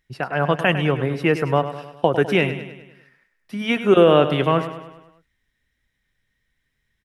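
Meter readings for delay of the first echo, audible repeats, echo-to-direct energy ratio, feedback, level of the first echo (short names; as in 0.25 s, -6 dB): 0.102 s, 5, -10.0 dB, 53%, -11.5 dB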